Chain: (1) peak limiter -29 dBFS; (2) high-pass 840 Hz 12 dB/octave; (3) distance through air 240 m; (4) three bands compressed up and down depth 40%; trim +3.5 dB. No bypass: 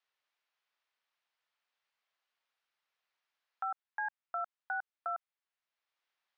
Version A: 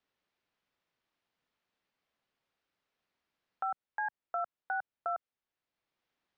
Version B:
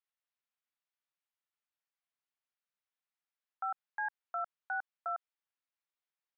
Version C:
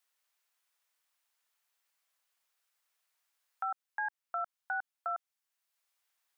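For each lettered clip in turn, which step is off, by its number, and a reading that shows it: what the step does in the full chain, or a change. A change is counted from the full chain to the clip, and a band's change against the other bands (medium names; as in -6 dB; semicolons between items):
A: 2, loudness change +2.0 LU; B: 4, crest factor change -3.0 dB; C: 3, loudness change +1.5 LU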